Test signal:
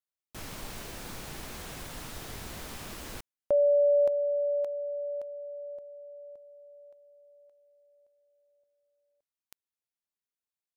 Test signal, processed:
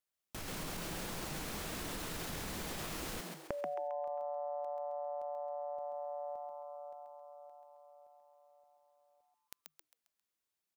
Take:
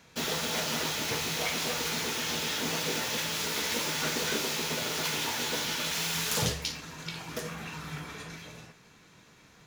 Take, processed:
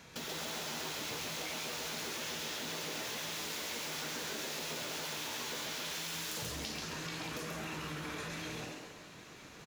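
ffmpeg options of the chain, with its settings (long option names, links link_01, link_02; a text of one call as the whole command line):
ffmpeg -i in.wav -filter_complex "[0:a]acompressor=threshold=-45dB:ratio=8:attack=9.7:release=46:knee=1:detection=peak,asplit=6[link_01][link_02][link_03][link_04][link_05][link_06];[link_02]adelay=134,afreqshift=150,volume=-3dB[link_07];[link_03]adelay=268,afreqshift=300,volume=-10.5dB[link_08];[link_04]adelay=402,afreqshift=450,volume=-18.1dB[link_09];[link_05]adelay=536,afreqshift=600,volume=-25.6dB[link_10];[link_06]adelay=670,afreqshift=750,volume=-33.1dB[link_11];[link_01][link_07][link_08][link_09][link_10][link_11]amix=inputs=6:normalize=0,volume=2.5dB" out.wav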